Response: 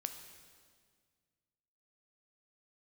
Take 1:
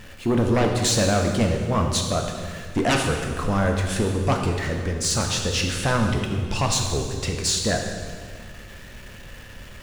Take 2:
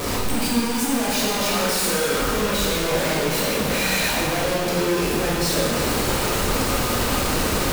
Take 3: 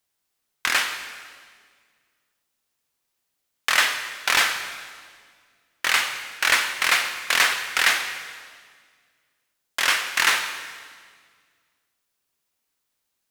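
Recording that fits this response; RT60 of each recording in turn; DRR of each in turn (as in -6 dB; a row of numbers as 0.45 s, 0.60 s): 3; 1.8 s, 1.8 s, 1.8 s; 2.0 dB, -5.5 dB, 6.5 dB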